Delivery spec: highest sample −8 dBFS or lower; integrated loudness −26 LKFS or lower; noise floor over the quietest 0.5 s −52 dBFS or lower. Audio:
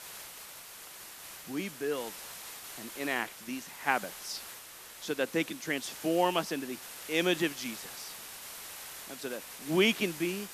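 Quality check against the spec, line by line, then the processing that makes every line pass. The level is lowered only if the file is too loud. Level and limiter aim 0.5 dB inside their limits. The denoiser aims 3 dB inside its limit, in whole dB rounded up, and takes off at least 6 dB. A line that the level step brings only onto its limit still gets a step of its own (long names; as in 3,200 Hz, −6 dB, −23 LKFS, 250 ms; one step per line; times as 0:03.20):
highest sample −11.0 dBFS: in spec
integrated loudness −33.5 LKFS: in spec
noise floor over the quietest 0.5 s −49 dBFS: out of spec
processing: broadband denoise 6 dB, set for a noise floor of −49 dBFS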